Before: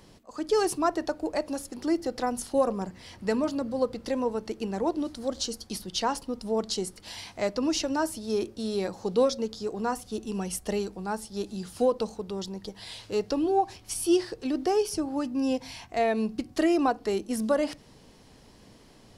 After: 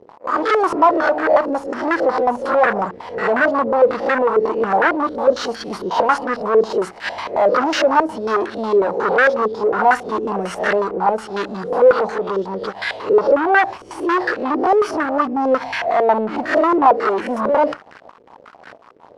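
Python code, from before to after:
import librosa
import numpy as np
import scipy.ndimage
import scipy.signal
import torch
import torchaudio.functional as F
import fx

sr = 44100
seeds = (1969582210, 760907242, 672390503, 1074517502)

y = fx.spec_swells(x, sr, rise_s=0.35)
y = fx.leveller(y, sr, passes=5)
y = fx.tilt_eq(y, sr, slope=4.5)
y = fx.filter_held_lowpass(y, sr, hz=11.0, low_hz=450.0, high_hz=1600.0)
y = F.gain(torch.from_numpy(y), -1.0).numpy()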